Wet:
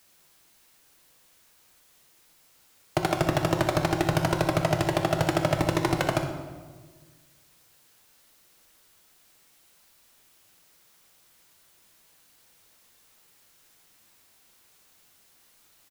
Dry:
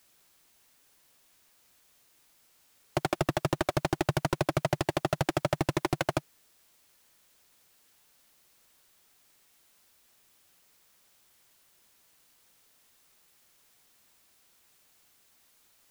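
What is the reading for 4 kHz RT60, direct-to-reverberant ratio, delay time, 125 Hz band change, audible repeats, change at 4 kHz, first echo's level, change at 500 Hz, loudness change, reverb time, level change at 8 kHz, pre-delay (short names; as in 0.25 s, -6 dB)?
1.0 s, 4.0 dB, 62 ms, +5.0 dB, 1, +4.5 dB, -13.5 dB, +4.5 dB, +4.5 dB, 1.4 s, +4.0 dB, 5 ms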